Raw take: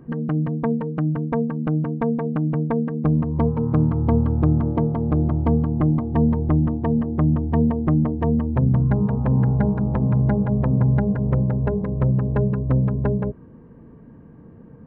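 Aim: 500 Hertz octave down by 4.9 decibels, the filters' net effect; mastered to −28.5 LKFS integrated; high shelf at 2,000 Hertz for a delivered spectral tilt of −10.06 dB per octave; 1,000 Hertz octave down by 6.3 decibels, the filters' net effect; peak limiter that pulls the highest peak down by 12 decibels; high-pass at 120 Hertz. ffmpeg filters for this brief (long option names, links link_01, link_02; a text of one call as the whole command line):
ffmpeg -i in.wav -af "highpass=120,equalizer=frequency=500:width_type=o:gain=-4.5,equalizer=frequency=1000:width_type=o:gain=-5.5,highshelf=frequency=2000:gain=-4,volume=0.5dB,alimiter=limit=-21dB:level=0:latency=1" out.wav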